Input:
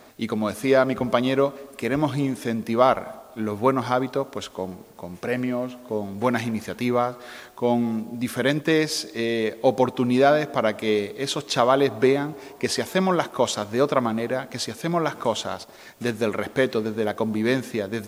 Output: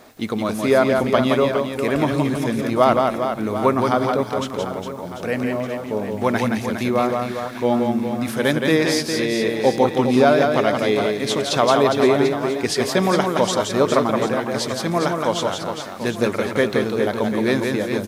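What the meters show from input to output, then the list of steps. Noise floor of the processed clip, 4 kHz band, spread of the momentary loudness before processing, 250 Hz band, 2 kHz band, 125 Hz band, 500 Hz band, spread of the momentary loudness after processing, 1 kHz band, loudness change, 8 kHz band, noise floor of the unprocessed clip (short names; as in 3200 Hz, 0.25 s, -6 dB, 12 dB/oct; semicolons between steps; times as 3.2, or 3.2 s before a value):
-31 dBFS, +4.0 dB, 11 LU, +4.0 dB, +4.0 dB, +4.0 dB, +4.0 dB, 8 LU, +4.0 dB, +4.0 dB, +4.0 dB, -47 dBFS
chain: reverse bouncing-ball echo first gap 0.17 s, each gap 1.4×, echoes 5; gain +2 dB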